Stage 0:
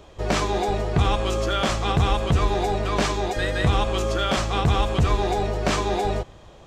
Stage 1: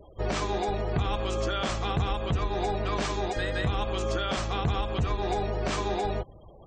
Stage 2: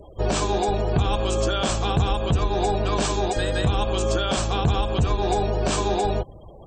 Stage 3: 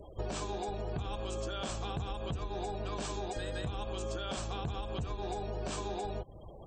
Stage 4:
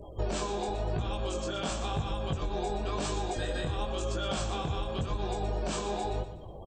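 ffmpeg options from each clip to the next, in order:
-af "alimiter=limit=-16.5dB:level=0:latency=1:release=305,afftfilt=real='re*gte(hypot(re,im),0.00708)':imag='im*gte(hypot(re,im),0.00708)':win_size=1024:overlap=0.75,volume=-2.5dB"
-af "equalizer=f=1.25k:t=o:w=0.33:g=-4,equalizer=f=2k:t=o:w=0.33:g=-10,equalizer=f=8k:t=o:w=0.33:g=10,volume=6.5dB"
-af "acompressor=threshold=-29dB:ratio=6,volume=-5.5dB"
-af "flanger=delay=18.5:depth=6.4:speed=0.94,aecho=1:1:121|242|363|484:0.282|0.0958|0.0326|0.0111,volume=7.5dB"

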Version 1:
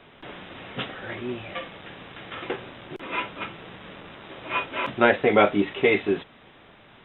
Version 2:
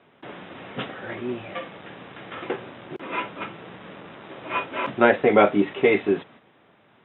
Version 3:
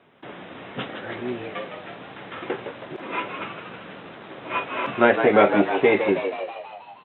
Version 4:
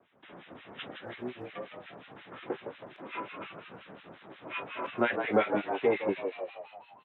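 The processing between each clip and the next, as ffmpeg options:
-af "lowpass=f=1.9k:p=1,agate=range=-7dB:threshold=-49dB:ratio=16:detection=peak,highpass=120,volume=2.5dB"
-filter_complex "[0:a]asplit=9[a][b][c][d][e][f][g][h][i];[b]adelay=160,afreqshift=83,volume=-8dB[j];[c]adelay=320,afreqshift=166,volume=-12.3dB[k];[d]adelay=480,afreqshift=249,volume=-16.6dB[l];[e]adelay=640,afreqshift=332,volume=-20.9dB[m];[f]adelay=800,afreqshift=415,volume=-25.2dB[n];[g]adelay=960,afreqshift=498,volume=-29.5dB[o];[h]adelay=1120,afreqshift=581,volume=-33.8dB[p];[i]adelay=1280,afreqshift=664,volume=-38.1dB[q];[a][j][k][l][m][n][o][p][q]amix=inputs=9:normalize=0"
-filter_complex "[0:a]acrossover=split=1400[a][b];[a]aeval=exprs='val(0)*(1-1/2+1/2*cos(2*PI*5.6*n/s))':c=same[c];[b]aeval=exprs='val(0)*(1-1/2-1/2*cos(2*PI*5.6*n/s))':c=same[d];[c][d]amix=inputs=2:normalize=0,acrossover=split=110|570|1400[e][f][g][h];[e]acrusher=bits=5:mode=log:mix=0:aa=0.000001[i];[i][f][g][h]amix=inputs=4:normalize=0,volume=-5.5dB"

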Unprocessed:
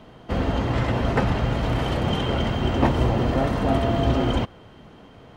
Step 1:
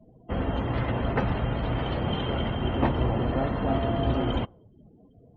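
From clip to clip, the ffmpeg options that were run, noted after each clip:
-af "afftdn=nr=35:nf=-40,volume=-4.5dB"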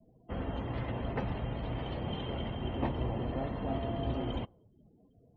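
-af "adynamicequalizer=threshold=0.00282:dfrequency=1400:dqfactor=2.8:tfrequency=1400:tqfactor=2.8:attack=5:release=100:ratio=0.375:range=3:mode=cutabove:tftype=bell,volume=-8.5dB"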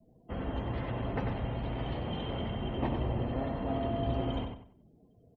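-filter_complex "[0:a]asplit=2[a][b];[b]adelay=94,lowpass=f=3.4k:p=1,volume=-5dB,asplit=2[c][d];[d]adelay=94,lowpass=f=3.4k:p=1,volume=0.32,asplit=2[e][f];[f]adelay=94,lowpass=f=3.4k:p=1,volume=0.32,asplit=2[g][h];[h]adelay=94,lowpass=f=3.4k:p=1,volume=0.32[i];[a][c][e][g][i]amix=inputs=5:normalize=0"

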